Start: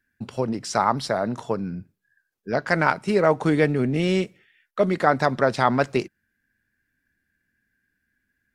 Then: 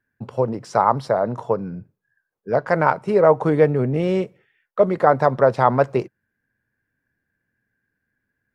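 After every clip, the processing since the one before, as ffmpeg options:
-af "equalizer=f=125:t=o:w=1:g=10,equalizer=f=500:t=o:w=1:g=11,equalizer=f=1000:t=o:w=1:g=9,equalizer=f=4000:t=o:w=1:g=-3,equalizer=f=8000:t=o:w=1:g=-4,volume=0.501"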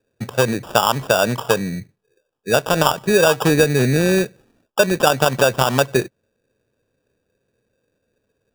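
-af "acompressor=threshold=0.158:ratio=6,acrusher=samples=21:mix=1:aa=0.000001,volume=1.88"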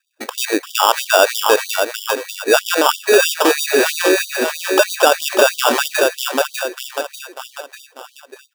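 -filter_complex "[0:a]asplit=2[s0][s1];[s1]aecho=0:1:594|1188|1782|2376|2970:0.376|0.177|0.083|0.039|0.0183[s2];[s0][s2]amix=inputs=2:normalize=0,alimiter=level_in=3.16:limit=0.891:release=50:level=0:latency=1,afftfilt=real='re*gte(b*sr/1024,240*pow(3000/240,0.5+0.5*sin(2*PI*3.1*pts/sr)))':imag='im*gte(b*sr/1024,240*pow(3000/240,0.5+0.5*sin(2*PI*3.1*pts/sr)))':win_size=1024:overlap=0.75,volume=0.891"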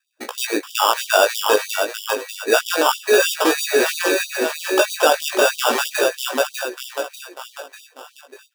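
-af "flanger=delay=16:depth=3.3:speed=0.3"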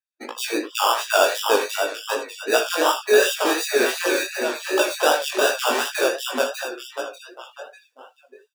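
-af "aecho=1:1:43|78:0.251|0.299,flanger=delay=17:depth=6.9:speed=2.7,afftdn=nr=20:nf=-41"

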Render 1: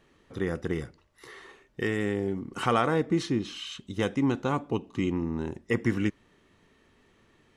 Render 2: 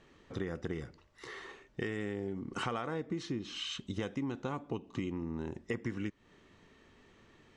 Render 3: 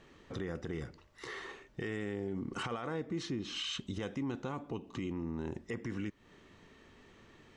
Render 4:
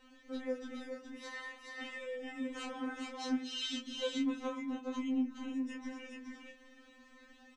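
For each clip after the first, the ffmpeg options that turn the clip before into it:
-af "lowpass=f=8000:w=0.5412,lowpass=f=8000:w=1.3066,acompressor=threshold=0.0178:ratio=6,volume=1.12"
-af "alimiter=level_in=2.37:limit=0.0631:level=0:latency=1:release=18,volume=0.422,volume=1.33"
-af "aecho=1:1:420:0.668,flanger=delay=22.5:depth=2.8:speed=0.36,afftfilt=real='re*3.46*eq(mod(b,12),0)':imag='im*3.46*eq(mod(b,12),0)':win_size=2048:overlap=0.75,volume=1.68"

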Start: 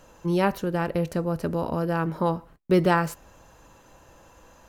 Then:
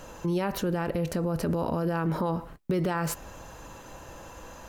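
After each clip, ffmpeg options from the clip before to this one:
-af "acompressor=threshold=0.0631:ratio=6,alimiter=level_in=1.5:limit=0.0631:level=0:latency=1:release=49,volume=0.668,volume=2.51"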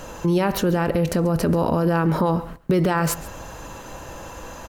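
-af "aecho=1:1:136:0.119,volume=2.51"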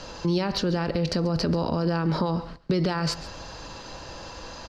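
-filter_complex "[0:a]lowpass=f=4700:t=q:w=5.9,acrossover=split=260[s0][s1];[s1]acompressor=threshold=0.0891:ratio=3[s2];[s0][s2]amix=inputs=2:normalize=0,volume=0.631"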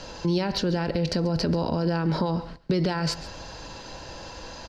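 -af "bandreject=f=1200:w=7.6"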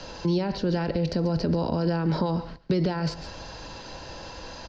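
-filter_complex "[0:a]lowpass=f=6600:w=0.5412,lowpass=f=6600:w=1.3066,acrossover=split=140|850[s0][s1][s2];[s2]alimiter=level_in=1.41:limit=0.0631:level=0:latency=1:release=160,volume=0.708[s3];[s0][s1][s3]amix=inputs=3:normalize=0"

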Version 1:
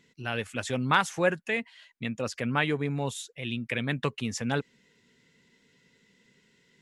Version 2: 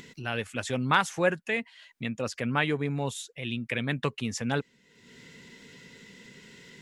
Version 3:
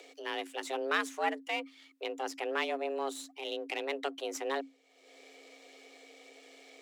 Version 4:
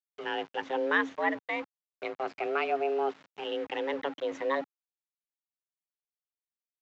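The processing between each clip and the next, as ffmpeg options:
-af "acompressor=mode=upward:threshold=0.0141:ratio=2.5"
-filter_complex "[0:a]aeval=exprs='if(lt(val(0),0),0.447*val(0),val(0))':c=same,asplit=2[s0][s1];[s1]alimiter=limit=0.106:level=0:latency=1:release=479,volume=0.841[s2];[s0][s2]amix=inputs=2:normalize=0,afreqshift=270,volume=0.398"
-af "afftfilt=real='re*pow(10,12/40*sin(2*PI*(1.1*log(max(b,1)*sr/1024/100)/log(2)-(0.33)*(pts-256)/sr)))':imag='im*pow(10,12/40*sin(2*PI*(1.1*log(max(b,1)*sr/1024/100)/log(2)-(0.33)*(pts-256)/sr)))':win_size=1024:overlap=0.75,aresample=16000,aeval=exprs='val(0)*gte(abs(val(0)),0.00891)':c=same,aresample=44100,highpass=140,lowpass=2200,volume=1.41"

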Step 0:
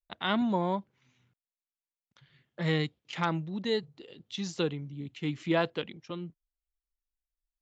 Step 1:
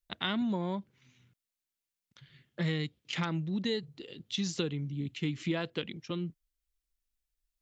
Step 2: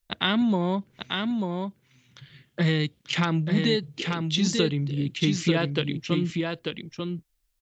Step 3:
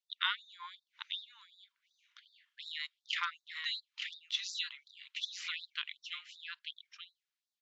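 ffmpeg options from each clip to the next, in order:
-af "equalizer=f=820:t=o:w=1.7:g=-8,acompressor=threshold=0.02:ratio=6,volume=1.88"
-af "aecho=1:1:891:0.596,volume=2.66"
-af "lowpass=4600,afftfilt=real='re*gte(b*sr/1024,880*pow(3600/880,0.5+0.5*sin(2*PI*2.7*pts/sr)))':imag='im*gte(b*sr/1024,880*pow(3600/880,0.5+0.5*sin(2*PI*2.7*pts/sr)))':win_size=1024:overlap=0.75,volume=0.501"

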